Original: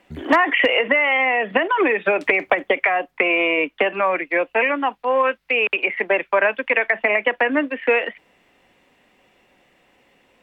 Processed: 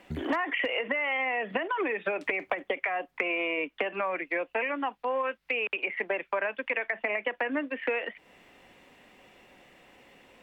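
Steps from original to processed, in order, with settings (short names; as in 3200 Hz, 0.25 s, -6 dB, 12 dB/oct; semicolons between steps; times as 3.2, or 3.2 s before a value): compressor 3:1, threshold -34 dBFS, peak gain reduction 16.5 dB; gain +2 dB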